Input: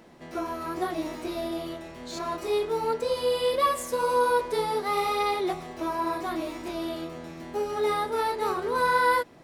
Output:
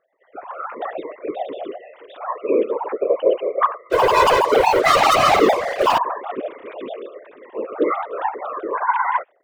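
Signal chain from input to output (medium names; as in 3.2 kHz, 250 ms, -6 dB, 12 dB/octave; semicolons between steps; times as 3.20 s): formants replaced by sine waves; level rider gain up to 16 dB; 3.90–5.98 s: waveshaping leveller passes 5; whisper effect; trim -7.5 dB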